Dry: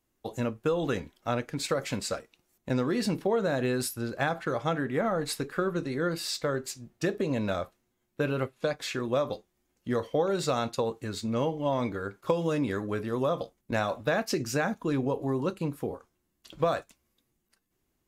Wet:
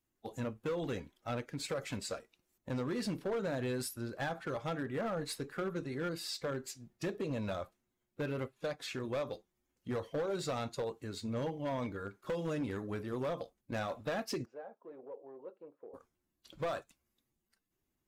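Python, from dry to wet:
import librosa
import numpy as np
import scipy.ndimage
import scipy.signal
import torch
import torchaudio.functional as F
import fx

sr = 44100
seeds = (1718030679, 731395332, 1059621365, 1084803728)

y = fx.spec_quant(x, sr, step_db=15)
y = np.clip(y, -10.0 ** (-24.0 / 20.0), 10.0 ** (-24.0 / 20.0))
y = fx.ladder_bandpass(y, sr, hz=610.0, resonance_pct=45, at=(14.44, 15.93), fade=0.02)
y = y * 10.0 ** (-7.0 / 20.0)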